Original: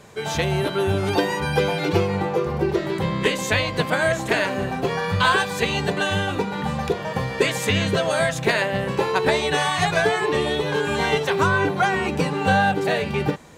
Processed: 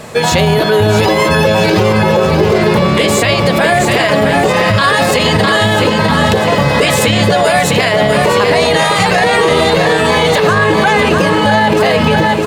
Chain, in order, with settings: peaking EQ 560 Hz +5 dB 0.21 oct; speed mistake 44.1 kHz file played as 48 kHz; feedback delay 651 ms, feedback 54%, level -8 dB; loudness maximiser +17 dB; trim -1 dB

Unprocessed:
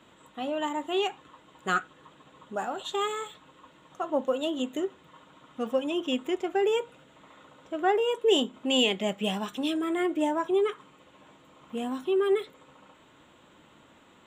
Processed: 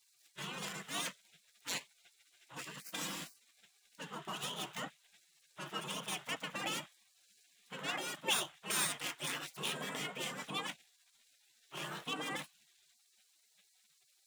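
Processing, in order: median filter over 9 samples; spectral gate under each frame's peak -25 dB weak; resonant low shelf 110 Hz -12.5 dB, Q 3; trim +6 dB

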